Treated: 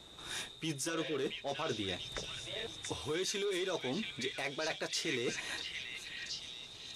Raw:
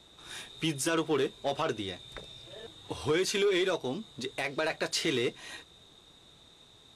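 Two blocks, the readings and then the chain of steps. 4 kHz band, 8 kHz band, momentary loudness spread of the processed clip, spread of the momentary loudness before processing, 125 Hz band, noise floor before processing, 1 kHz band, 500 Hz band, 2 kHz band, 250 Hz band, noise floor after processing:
-2.0 dB, -2.5 dB, 7 LU, 18 LU, -5.5 dB, -58 dBFS, -7.0 dB, -7.5 dB, -4.0 dB, -6.5 dB, -52 dBFS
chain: dynamic bell 5.9 kHz, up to +6 dB, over -51 dBFS, Q 2.4; spectral replace 0.92–1.17 s, 510–1100 Hz; reverse; compression, threshold -37 dBFS, peak gain reduction 12 dB; reverse; repeats whose band climbs or falls 681 ms, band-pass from 2.5 kHz, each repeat 0.7 oct, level 0 dB; trim +2.5 dB

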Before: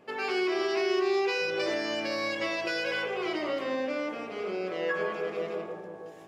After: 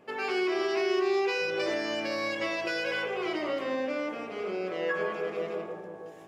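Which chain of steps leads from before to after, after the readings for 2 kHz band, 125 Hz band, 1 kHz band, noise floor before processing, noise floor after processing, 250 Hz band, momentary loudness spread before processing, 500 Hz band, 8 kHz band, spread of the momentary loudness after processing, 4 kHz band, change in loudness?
0.0 dB, 0.0 dB, 0.0 dB, -43 dBFS, -43 dBFS, 0.0 dB, 8 LU, 0.0 dB, no reading, 8 LU, -1.5 dB, 0.0 dB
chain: peaking EQ 4.4 kHz -2.5 dB

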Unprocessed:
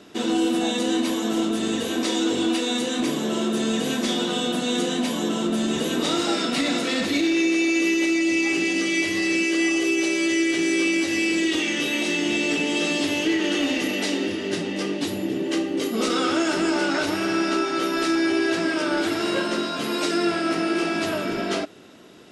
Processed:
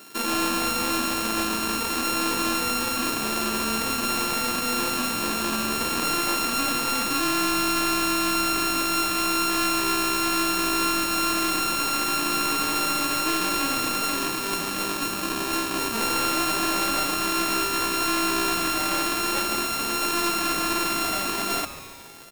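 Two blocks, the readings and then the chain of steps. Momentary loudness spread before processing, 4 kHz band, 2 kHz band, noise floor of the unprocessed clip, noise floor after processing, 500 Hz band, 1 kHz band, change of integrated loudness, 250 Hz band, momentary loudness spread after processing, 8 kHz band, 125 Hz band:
5 LU, +0.5 dB, -1.5 dB, -28 dBFS, -29 dBFS, -7.0 dB, +6.0 dB, -0.5 dB, -7.0 dB, 3 LU, +5.0 dB, -2.5 dB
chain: sorted samples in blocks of 32 samples; tilt EQ +2.5 dB/octave; saturation -16 dBFS, distortion -7 dB; on a send: frequency-shifting echo 141 ms, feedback 63%, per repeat -140 Hz, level -14.5 dB

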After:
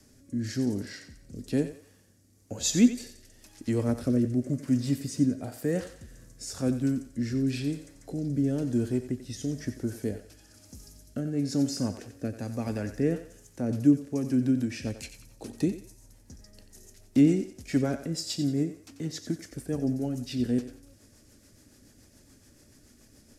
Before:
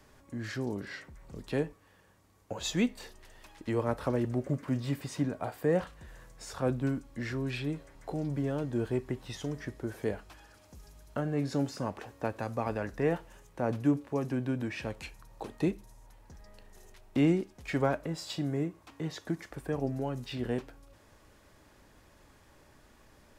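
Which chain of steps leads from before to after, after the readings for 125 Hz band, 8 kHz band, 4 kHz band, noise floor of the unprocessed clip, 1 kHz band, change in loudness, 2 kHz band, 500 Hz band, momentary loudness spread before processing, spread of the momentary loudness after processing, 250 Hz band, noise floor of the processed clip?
+3.0 dB, +10.5 dB, +4.0 dB, -61 dBFS, -7.5 dB, +4.5 dB, -3.0 dB, -0.5 dB, 14 LU, 16 LU, +6.5 dB, -59 dBFS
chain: fifteen-band graphic EQ 100 Hz +7 dB, 250 Hz +10 dB, 1 kHz -9 dB; rotary cabinet horn 1 Hz, later 7 Hz, at 13.25 s; high-order bell 7.7 kHz +11.5 dB; thinning echo 90 ms, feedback 37%, high-pass 400 Hz, level -10 dB

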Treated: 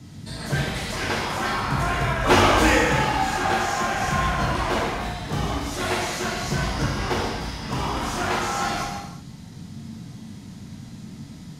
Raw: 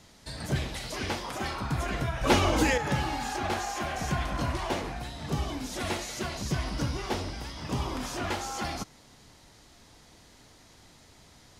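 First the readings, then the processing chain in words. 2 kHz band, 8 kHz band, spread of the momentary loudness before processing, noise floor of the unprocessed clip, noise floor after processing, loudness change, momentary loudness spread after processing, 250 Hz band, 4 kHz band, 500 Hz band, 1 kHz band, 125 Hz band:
+10.0 dB, +6.0 dB, 10 LU, -56 dBFS, -41 dBFS, +7.5 dB, 21 LU, +6.0 dB, +7.0 dB, +7.0 dB, +9.5 dB, +5.5 dB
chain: dynamic bell 1.3 kHz, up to +6 dB, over -45 dBFS, Q 0.76; band noise 72–250 Hz -44 dBFS; gated-style reverb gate 400 ms falling, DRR -4 dB

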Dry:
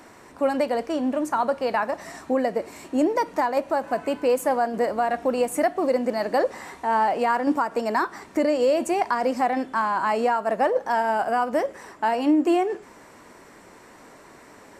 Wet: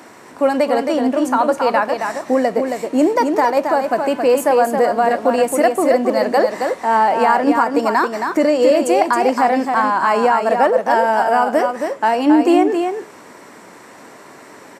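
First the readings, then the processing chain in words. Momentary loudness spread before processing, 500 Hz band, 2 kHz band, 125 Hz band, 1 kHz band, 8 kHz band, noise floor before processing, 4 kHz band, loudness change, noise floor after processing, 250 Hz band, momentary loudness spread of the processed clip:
6 LU, +8.0 dB, +8.0 dB, no reading, +8.0 dB, +8.0 dB, -49 dBFS, +8.0 dB, +8.0 dB, -41 dBFS, +8.0 dB, 5 LU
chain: high-pass 140 Hz 12 dB/octave; on a send: delay 271 ms -5.5 dB; on the sum: trim +7 dB

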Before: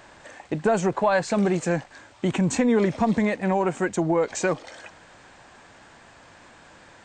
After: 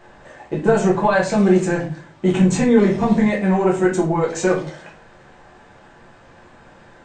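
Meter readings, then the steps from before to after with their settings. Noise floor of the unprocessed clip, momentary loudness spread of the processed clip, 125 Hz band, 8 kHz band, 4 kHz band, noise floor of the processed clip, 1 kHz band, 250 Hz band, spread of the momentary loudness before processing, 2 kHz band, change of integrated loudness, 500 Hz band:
-51 dBFS, 8 LU, +7.5 dB, +2.5 dB, +3.5 dB, -48 dBFS, +4.0 dB, +7.0 dB, 8 LU, +4.5 dB, +6.0 dB, +6.0 dB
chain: simulated room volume 35 m³, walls mixed, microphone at 0.85 m; tape noise reduction on one side only decoder only; trim -1 dB

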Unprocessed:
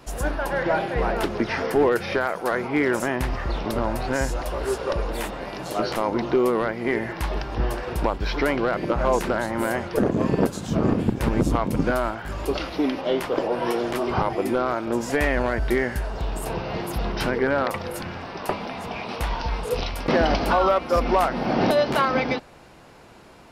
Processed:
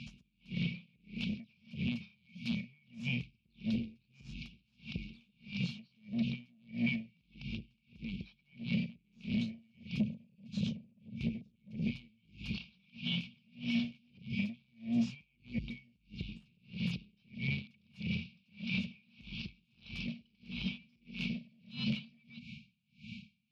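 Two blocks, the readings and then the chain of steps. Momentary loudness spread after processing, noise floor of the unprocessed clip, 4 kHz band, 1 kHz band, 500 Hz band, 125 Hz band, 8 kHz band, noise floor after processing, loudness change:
16 LU, -41 dBFS, -9.0 dB, under -40 dB, -36.0 dB, -11.0 dB, under -25 dB, -75 dBFS, -15.5 dB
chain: FFT band-reject 240–2200 Hz; compression 6:1, threshold -34 dBFS, peak gain reduction 15.5 dB; peak limiter -30.5 dBFS, peak gain reduction 9 dB; saturation -32.5 dBFS, distortion -20 dB; band-pass 170–7800 Hz; distance through air 280 m; logarithmic tremolo 1.6 Hz, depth 37 dB; trim +13 dB

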